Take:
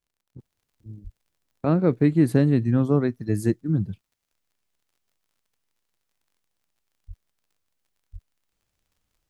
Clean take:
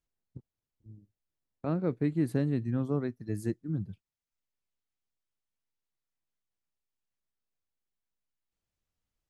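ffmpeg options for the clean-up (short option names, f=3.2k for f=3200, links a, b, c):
-filter_complex "[0:a]adeclick=t=4,asplit=3[a][b][c];[a]afade=t=out:st=1.03:d=0.02[d];[b]highpass=f=140:w=0.5412,highpass=f=140:w=1.3066,afade=t=in:st=1.03:d=0.02,afade=t=out:st=1.15:d=0.02[e];[c]afade=t=in:st=1.15:d=0.02[f];[d][e][f]amix=inputs=3:normalize=0,asplit=3[g][h][i];[g]afade=t=out:st=7.07:d=0.02[j];[h]highpass=f=140:w=0.5412,highpass=f=140:w=1.3066,afade=t=in:st=7.07:d=0.02,afade=t=out:st=7.19:d=0.02[k];[i]afade=t=in:st=7.19:d=0.02[l];[j][k][l]amix=inputs=3:normalize=0,asplit=3[m][n][o];[m]afade=t=out:st=8.12:d=0.02[p];[n]highpass=f=140:w=0.5412,highpass=f=140:w=1.3066,afade=t=in:st=8.12:d=0.02,afade=t=out:st=8.24:d=0.02[q];[o]afade=t=in:st=8.24:d=0.02[r];[p][q][r]amix=inputs=3:normalize=0,asetnsamples=n=441:p=0,asendcmd='0.38 volume volume -10dB',volume=0dB"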